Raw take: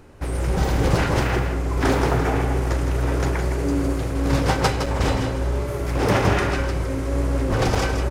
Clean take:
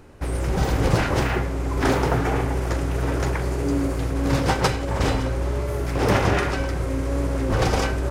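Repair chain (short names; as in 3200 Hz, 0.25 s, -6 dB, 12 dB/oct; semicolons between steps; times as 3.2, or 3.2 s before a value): interpolate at 4.86/7.75, 4.1 ms; inverse comb 0.162 s -7.5 dB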